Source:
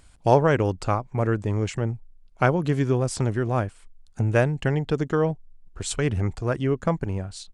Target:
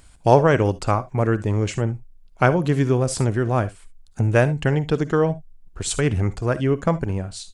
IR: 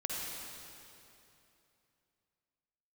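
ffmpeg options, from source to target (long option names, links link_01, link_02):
-filter_complex "[0:a]asplit=2[link_01][link_02];[1:a]atrim=start_sample=2205,atrim=end_sample=3528,highshelf=frequency=7600:gain=11.5[link_03];[link_02][link_03]afir=irnorm=-1:irlink=0,volume=-8.5dB[link_04];[link_01][link_04]amix=inputs=2:normalize=0,volume=1dB"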